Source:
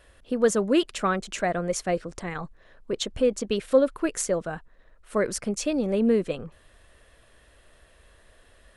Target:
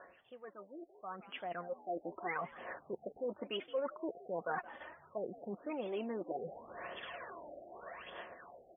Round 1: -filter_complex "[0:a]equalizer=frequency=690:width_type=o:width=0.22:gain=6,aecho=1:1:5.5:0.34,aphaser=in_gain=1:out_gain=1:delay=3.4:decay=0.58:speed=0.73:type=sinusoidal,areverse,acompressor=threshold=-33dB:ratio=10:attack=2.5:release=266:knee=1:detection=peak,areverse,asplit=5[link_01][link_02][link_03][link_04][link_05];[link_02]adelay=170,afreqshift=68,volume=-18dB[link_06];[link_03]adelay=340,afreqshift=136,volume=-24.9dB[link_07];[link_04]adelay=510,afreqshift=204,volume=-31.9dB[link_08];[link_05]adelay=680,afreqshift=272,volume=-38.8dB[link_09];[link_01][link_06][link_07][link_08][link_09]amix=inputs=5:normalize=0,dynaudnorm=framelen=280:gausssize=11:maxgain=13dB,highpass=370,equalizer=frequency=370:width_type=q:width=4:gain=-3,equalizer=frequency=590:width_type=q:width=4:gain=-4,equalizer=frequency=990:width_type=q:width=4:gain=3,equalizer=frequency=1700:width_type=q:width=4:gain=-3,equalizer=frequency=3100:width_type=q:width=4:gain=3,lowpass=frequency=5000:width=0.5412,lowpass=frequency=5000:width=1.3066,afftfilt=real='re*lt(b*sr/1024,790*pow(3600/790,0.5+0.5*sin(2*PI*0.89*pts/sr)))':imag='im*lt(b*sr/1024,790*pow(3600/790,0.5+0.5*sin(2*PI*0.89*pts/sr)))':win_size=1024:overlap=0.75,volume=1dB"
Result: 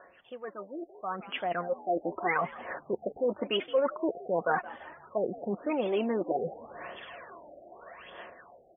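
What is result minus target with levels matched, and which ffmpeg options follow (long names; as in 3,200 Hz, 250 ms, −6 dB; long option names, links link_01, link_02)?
downward compressor: peak gain reduction −10.5 dB
-filter_complex "[0:a]equalizer=frequency=690:width_type=o:width=0.22:gain=6,aecho=1:1:5.5:0.34,aphaser=in_gain=1:out_gain=1:delay=3.4:decay=0.58:speed=0.73:type=sinusoidal,areverse,acompressor=threshold=-44.5dB:ratio=10:attack=2.5:release=266:knee=1:detection=peak,areverse,asplit=5[link_01][link_02][link_03][link_04][link_05];[link_02]adelay=170,afreqshift=68,volume=-18dB[link_06];[link_03]adelay=340,afreqshift=136,volume=-24.9dB[link_07];[link_04]adelay=510,afreqshift=204,volume=-31.9dB[link_08];[link_05]adelay=680,afreqshift=272,volume=-38.8dB[link_09];[link_01][link_06][link_07][link_08][link_09]amix=inputs=5:normalize=0,dynaudnorm=framelen=280:gausssize=11:maxgain=13dB,highpass=370,equalizer=frequency=370:width_type=q:width=4:gain=-3,equalizer=frequency=590:width_type=q:width=4:gain=-4,equalizer=frequency=990:width_type=q:width=4:gain=3,equalizer=frequency=1700:width_type=q:width=4:gain=-3,equalizer=frequency=3100:width_type=q:width=4:gain=3,lowpass=frequency=5000:width=0.5412,lowpass=frequency=5000:width=1.3066,afftfilt=real='re*lt(b*sr/1024,790*pow(3600/790,0.5+0.5*sin(2*PI*0.89*pts/sr)))':imag='im*lt(b*sr/1024,790*pow(3600/790,0.5+0.5*sin(2*PI*0.89*pts/sr)))':win_size=1024:overlap=0.75,volume=1dB"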